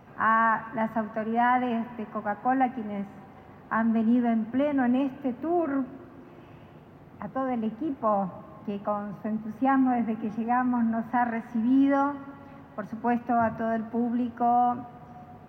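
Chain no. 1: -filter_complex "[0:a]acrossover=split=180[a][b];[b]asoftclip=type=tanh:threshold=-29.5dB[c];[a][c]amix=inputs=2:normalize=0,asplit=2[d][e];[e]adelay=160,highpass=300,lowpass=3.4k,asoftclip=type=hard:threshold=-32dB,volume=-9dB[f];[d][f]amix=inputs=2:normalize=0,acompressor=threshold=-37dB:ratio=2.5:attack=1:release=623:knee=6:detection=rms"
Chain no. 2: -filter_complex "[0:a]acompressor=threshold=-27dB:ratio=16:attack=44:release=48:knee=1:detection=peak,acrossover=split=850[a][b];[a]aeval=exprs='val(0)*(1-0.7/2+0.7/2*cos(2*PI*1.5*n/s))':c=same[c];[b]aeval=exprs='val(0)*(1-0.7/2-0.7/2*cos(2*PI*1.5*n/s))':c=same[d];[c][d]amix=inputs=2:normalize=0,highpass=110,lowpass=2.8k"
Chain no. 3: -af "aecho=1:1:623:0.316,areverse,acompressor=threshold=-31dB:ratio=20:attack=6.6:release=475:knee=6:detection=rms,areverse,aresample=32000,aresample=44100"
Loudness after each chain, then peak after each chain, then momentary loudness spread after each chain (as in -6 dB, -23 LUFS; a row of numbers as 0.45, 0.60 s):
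-39.0, -32.5, -38.0 LUFS; -31.0, -17.0, -25.0 dBFS; 11, 14, 5 LU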